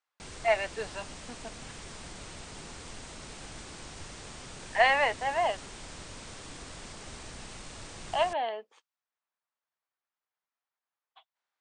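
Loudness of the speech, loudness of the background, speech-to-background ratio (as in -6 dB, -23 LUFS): -28.5 LUFS, -44.0 LUFS, 15.5 dB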